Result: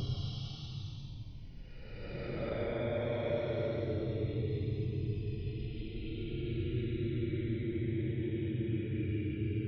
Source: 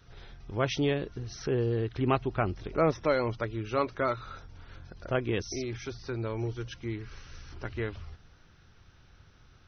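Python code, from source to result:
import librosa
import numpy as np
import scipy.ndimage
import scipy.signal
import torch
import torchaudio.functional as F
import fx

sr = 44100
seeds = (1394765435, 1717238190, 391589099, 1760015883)

y = fx.env_phaser(x, sr, low_hz=370.0, high_hz=3000.0, full_db=-24.0)
y = fx.paulstretch(y, sr, seeds[0], factor=32.0, window_s=0.05, from_s=3.33)
y = fx.rider(y, sr, range_db=3, speed_s=0.5)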